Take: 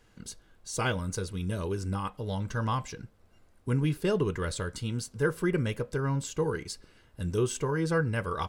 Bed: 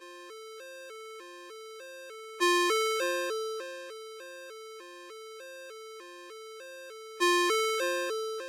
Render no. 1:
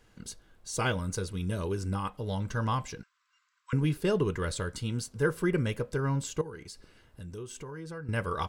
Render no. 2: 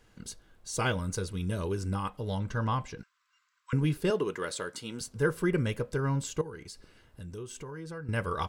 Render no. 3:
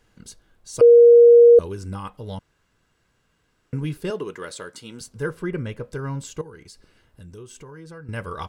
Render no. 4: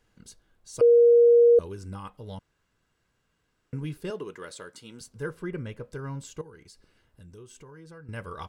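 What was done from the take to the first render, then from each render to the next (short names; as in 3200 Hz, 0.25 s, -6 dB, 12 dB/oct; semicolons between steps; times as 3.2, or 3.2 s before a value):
3.03–3.73 brick-wall FIR band-pass 970–8100 Hz; 6.41–8.09 compressor 2.5:1, threshold -44 dBFS
2.38–2.97 LPF 4900 Hz -> 3000 Hz 6 dB/oct; 4.1–5.01 HPF 280 Hz
0.81–1.59 bleep 473 Hz -6.5 dBFS; 2.39–3.73 room tone; 5.29–5.82 high shelf 6600 Hz -> 4300 Hz -11 dB
gain -6.5 dB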